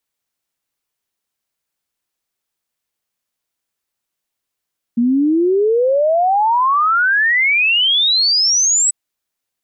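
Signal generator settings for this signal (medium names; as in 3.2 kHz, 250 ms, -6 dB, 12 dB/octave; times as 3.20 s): log sweep 230 Hz -> 8 kHz 3.94 s -11 dBFS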